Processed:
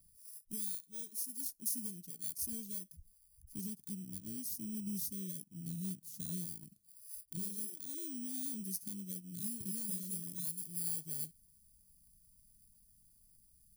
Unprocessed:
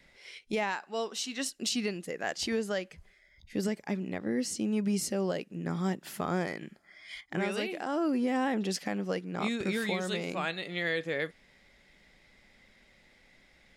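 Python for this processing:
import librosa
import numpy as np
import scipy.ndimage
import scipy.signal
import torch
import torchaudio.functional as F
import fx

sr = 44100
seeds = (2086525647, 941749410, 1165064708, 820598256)

y = fx.bit_reversed(x, sr, seeds[0], block=16)
y = scipy.signal.sosfilt(scipy.signal.cheby1(2, 1.0, [120.0, 7800.0], 'bandstop', fs=sr, output='sos'), y)
y = F.gain(torch.from_numpy(y), -2.5).numpy()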